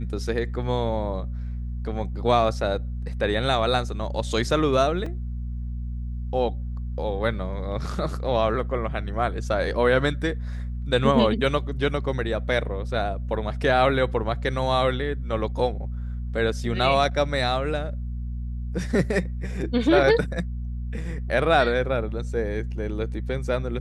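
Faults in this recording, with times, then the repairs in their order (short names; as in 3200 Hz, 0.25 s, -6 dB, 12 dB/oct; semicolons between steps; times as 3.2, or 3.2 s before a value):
hum 60 Hz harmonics 4 -30 dBFS
5.06 gap 3.3 ms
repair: de-hum 60 Hz, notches 4; interpolate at 5.06, 3.3 ms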